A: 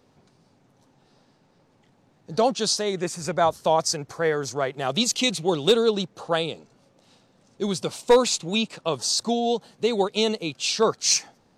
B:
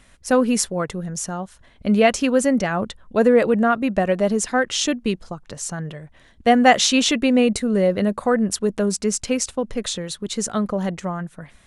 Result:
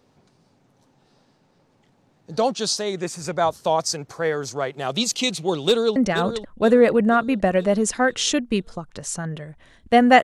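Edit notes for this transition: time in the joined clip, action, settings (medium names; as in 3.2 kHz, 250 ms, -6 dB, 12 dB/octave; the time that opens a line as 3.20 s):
A
5.65–5.96 s: echo throw 480 ms, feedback 50%, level -9 dB
5.96 s: go over to B from 2.50 s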